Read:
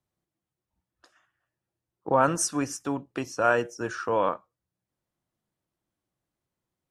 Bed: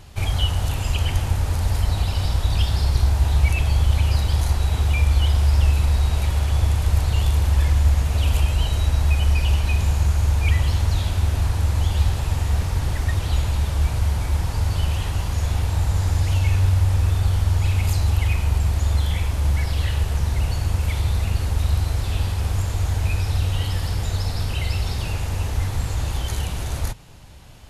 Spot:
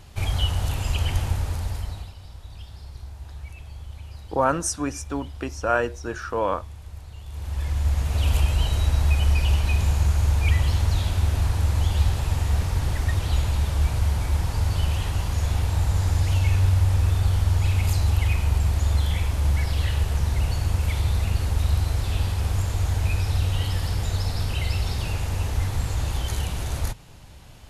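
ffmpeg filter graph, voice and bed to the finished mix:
-filter_complex "[0:a]adelay=2250,volume=0.5dB[a];[1:a]volume=16.5dB,afade=t=out:st=1.23:d=0.92:silence=0.125893,afade=t=in:st=7.26:d=1.06:silence=0.112202[b];[a][b]amix=inputs=2:normalize=0"

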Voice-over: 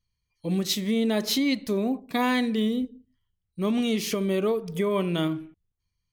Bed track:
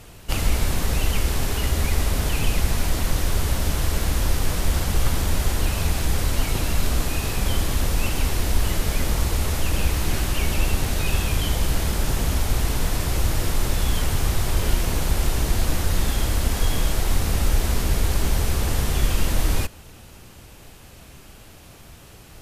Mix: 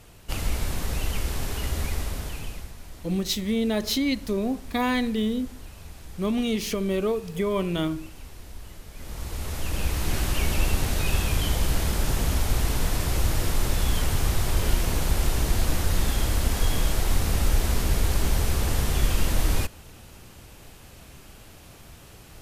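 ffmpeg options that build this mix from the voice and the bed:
-filter_complex "[0:a]adelay=2600,volume=-0.5dB[a];[1:a]volume=12.5dB,afade=t=out:st=1.81:d=0.92:silence=0.188365,afade=t=in:st=8.93:d=1.36:silence=0.11885[b];[a][b]amix=inputs=2:normalize=0"

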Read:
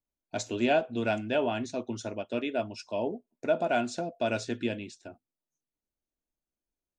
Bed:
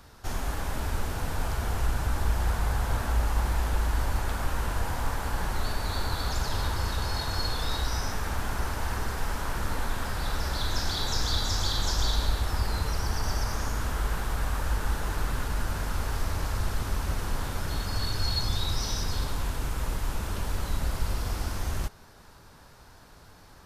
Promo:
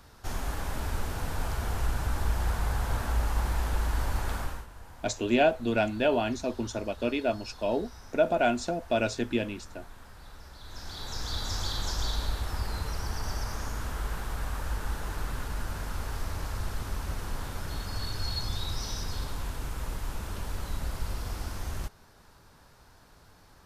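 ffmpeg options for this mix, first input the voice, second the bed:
-filter_complex "[0:a]adelay=4700,volume=2.5dB[a];[1:a]volume=12dB,afade=t=out:st=4.36:d=0.3:silence=0.149624,afade=t=in:st=10.61:d=0.94:silence=0.199526[b];[a][b]amix=inputs=2:normalize=0"

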